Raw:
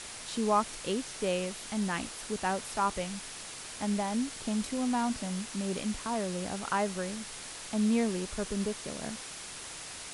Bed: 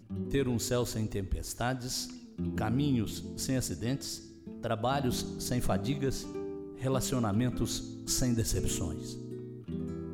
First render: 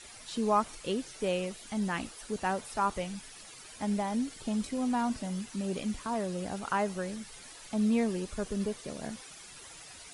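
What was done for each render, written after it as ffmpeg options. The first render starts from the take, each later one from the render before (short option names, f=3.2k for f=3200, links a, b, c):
-af "afftdn=nr=11:nf=-44"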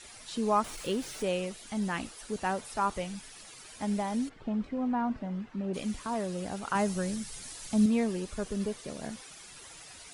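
-filter_complex "[0:a]asettb=1/sr,asplit=3[a][b][c];[a]atrim=end=0.644[d];[b]atrim=start=0.64:end=1.23,asetpts=PTS-STARTPTS,afade=t=in:d=0.004:c=qsin,afade=t=out:st=0.586:d=0.004:c=qsin,aeval=exprs='val(0)+0.5*0.0075*sgn(val(0))':c=same[e];[c]atrim=start=1.226[f];[d][e]acrossfade=d=0.004:c1=hsin:c2=qsin[g];[g][f]acrossfade=d=0.004:c1=qsin:c2=hsin,asplit=3[h][i][j];[h]afade=t=out:st=4.28:d=0.02[k];[i]lowpass=1.8k,afade=t=in:st=4.28:d=0.02,afade=t=out:st=5.73:d=0.02[l];[j]afade=t=in:st=5.73:d=0.02[m];[k][l][m]amix=inputs=3:normalize=0,asettb=1/sr,asplit=3[n][o][p];[n]atrim=end=6.754[q];[o]atrim=start=6.75:end=7.86,asetpts=PTS-STARTPTS,afade=t=in:d=0.004:c=qsin,afade=t=out:st=1.106:d=0.004:c=qsin,bass=f=250:g=8,treble=f=4k:g=7[r];[p]atrim=start=7.856[s];[q][r]acrossfade=d=0.004:c1=hsin:c2=qsin[t];[t][s]acrossfade=d=0.004:c1=qsin:c2=hsin"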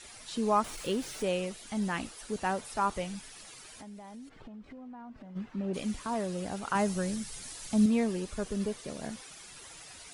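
-filter_complex "[0:a]asplit=3[a][b][c];[a]afade=t=out:st=3.58:d=0.02[d];[b]acompressor=threshold=-45dB:ratio=6:attack=3.2:release=140:knee=1:detection=peak,afade=t=in:st=3.58:d=0.02,afade=t=out:st=5.35:d=0.02[e];[c]afade=t=in:st=5.35:d=0.02[f];[d][e][f]amix=inputs=3:normalize=0"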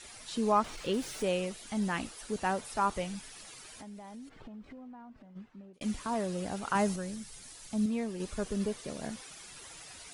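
-filter_complex "[0:a]asettb=1/sr,asplit=3[a][b][c];[a]atrim=end=0.524[d];[b]atrim=start=0.52:end=0.94,asetpts=PTS-STARTPTS,afade=t=in:d=0.004:c=qsin,afade=t=out:st=0.416:d=0.004:c=qsin,acrossover=split=6400[e][f];[f]acompressor=threshold=-59dB:ratio=4:attack=1:release=60[g];[e][g]amix=inputs=2:normalize=0[h];[c]atrim=start=0.936[i];[d][h]acrossfade=d=0.004:c1=hsin:c2=qsin[j];[j][i]acrossfade=d=0.004:c1=qsin:c2=hsin,asplit=4[k][l][m][n];[k]atrim=end=5.81,asetpts=PTS-STARTPTS,afade=t=out:st=4.64:d=1.17[o];[l]atrim=start=5.81:end=6.962,asetpts=PTS-STARTPTS,afade=t=in:d=0.004:c=hsin[p];[m]atrim=start=6.958:end=8.202,asetpts=PTS-STARTPTS,volume=-6dB[q];[n]atrim=start=8.198[r];[o][p]concat=n=2:v=0:a=1[s];[s][q]acrossfade=d=0.004:c1=hsin:c2=hsin[t];[t][r]acrossfade=d=0.004:c1=hsin:c2=hsin"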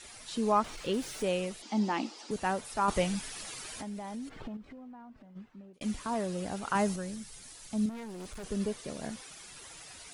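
-filter_complex "[0:a]asettb=1/sr,asplit=3[a][b][c];[a]atrim=end=1.624[d];[b]atrim=start=1.62:end=2.31,asetpts=PTS-STARTPTS,afade=t=in:d=0.004:c=qsin,afade=t=out:st=0.686:d=0.004:c=qsin,highpass=f=220:w=0.5412,highpass=f=220:w=1.3066,equalizer=f=220:t=q:w=4:g=7,equalizer=f=320:t=q:w=4:g=9,equalizer=f=850:t=q:w=4:g=8,equalizer=f=1.6k:t=q:w=4:g=-6,equalizer=f=4.9k:t=q:w=4:g=6,lowpass=f=6.7k:w=0.5412,lowpass=f=6.7k:w=1.3066[e];[c]atrim=start=2.306[f];[d][e]acrossfade=d=0.004:c1=hsin:c2=qsin[g];[g][f]acrossfade=d=0.004:c1=qsin:c2=hsin,asettb=1/sr,asplit=3[h][i][j];[h]atrim=end=2.884[k];[i]atrim=start=2.88:end=4.57,asetpts=PTS-STARTPTS,afade=t=in:d=0.004:c=qsin,afade=t=out:st=1.686:d=0.004:c=qsin,acontrast=72[l];[j]atrim=start=4.566[m];[k][l]acrossfade=d=0.004:c1=hsin:c2=qsin[n];[n][m]acrossfade=d=0.004:c1=qsin:c2=hsin,asettb=1/sr,asplit=3[o][p][q];[o]atrim=end=7.894[r];[p]atrim=start=7.89:end=8.44,asetpts=PTS-STARTPTS,afade=t=in:d=0.004:c=qsin,afade=t=out:st=0.546:d=0.004:c=qsin,asoftclip=type=hard:threshold=-40dB[s];[q]atrim=start=8.436[t];[r][s]acrossfade=d=0.004:c1=hsin:c2=qsin[u];[u][t]acrossfade=d=0.004:c1=qsin:c2=hsin"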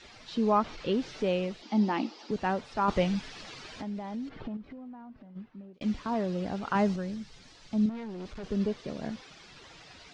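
-af "lowpass=f=5.1k:w=0.5412,lowpass=f=5.1k:w=1.3066,equalizer=f=200:t=o:w=2.9:g=4"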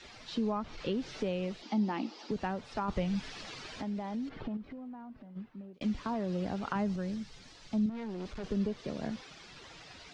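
-filter_complex "[0:a]acrossover=split=170[a][b];[b]acompressor=threshold=-32dB:ratio=6[c];[a][c]amix=inputs=2:normalize=0"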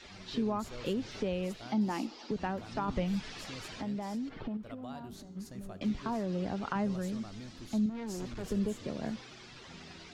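-filter_complex "[1:a]volume=-17dB[a];[0:a][a]amix=inputs=2:normalize=0"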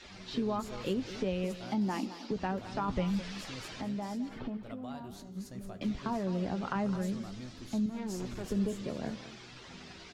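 -filter_complex "[0:a]asplit=2[a][b];[b]adelay=16,volume=-12dB[c];[a][c]amix=inputs=2:normalize=0,aecho=1:1:211:0.211"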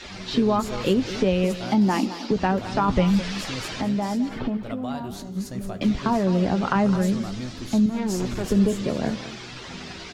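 -af "volume=12dB"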